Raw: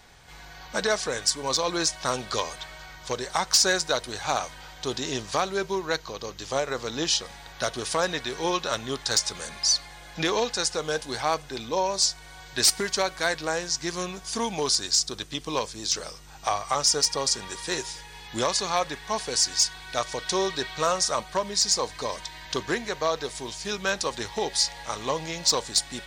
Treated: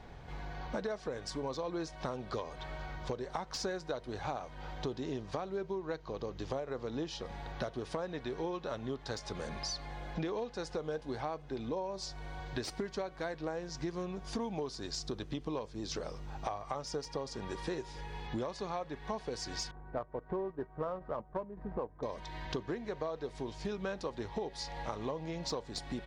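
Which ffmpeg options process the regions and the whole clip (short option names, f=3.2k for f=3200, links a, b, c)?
-filter_complex "[0:a]asettb=1/sr,asplit=3[a][b][c];[a]atrim=end=19.714[d];[b]atrim=start=19.71:end=22.03,asetpts=PTS-STARTPTS,afade=t=in:d=0.004:c=qsin,afade=t=out:st=2.316:d=0.004:c=qsin,agate=range=-6dB:threshold=-32dB:ratio=16:release=100:detection=peak,lowpass=f=1.8k:w=0.5412,lowpass=f=1.8k:w=1.3066,adynamicsmooth=sensitivity=4.5:basefreq=950[e];[c]atrim=start=22.026[f];[d][e]acrossfade=d=0.004:c1=hsin:c2=qsin[g];[g][f]acrossfade=d=0.004:c1=qsin:c2=hsin,firequalizer=gain_entry='entry(300,0);entry(1400,-10);entry(8200,-26)':delay=0.05:min_phase=1,acompressor=threshold=-42dB:ratio=6,volume=6.5dB"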